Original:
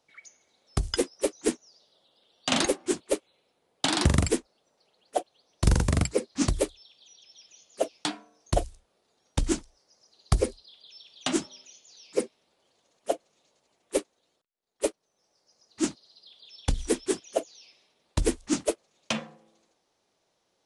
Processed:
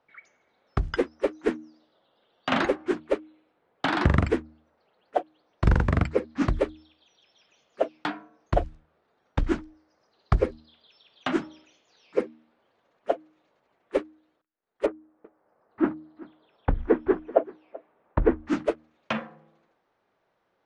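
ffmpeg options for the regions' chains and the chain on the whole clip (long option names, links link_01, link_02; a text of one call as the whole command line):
ffmpeg -i in.wav -filter_complex "[0:a]asettb=1/sr,asplit=3[link_01][link_02][link_03];[link_01]atrim=end=14.864[link_04];[link_02]atrim=start=14.86:end=18.46,asetpts=PTS-STARTPTS,afade=type=in:duration=0.004:curve=qsin,afade=type=out:start_time=3.596:duration=0.004:curve=qsin,lowpass=1500,equalizer=frequency=770:width=0.36:gain=5,aecho=1:1:384:0.0944,atrim=end_sample=158760[link_05];[link_03]atrim=start=18.456[link_06];[link_04][link_05]acrossfade=duration=0.004:curve1=hsin:curve2=qsin[link_07];[link_07][link_06]acrossfade=duration=0.004:curve1=qsin:curve2=hsin,lowpass=2100,equalizer=frequency=1500:width_type=o:width=1.1:gain=6,bandreject=frequency=77.83:width_type=h:width=4,bandreject=frequency=155.66:width_type=h:width=4,bandreject=frequency=233.49:width_type=h:width=4,bandreject=frequency=311.32:width_type=h:width=4,volume=1.5dB" out.wav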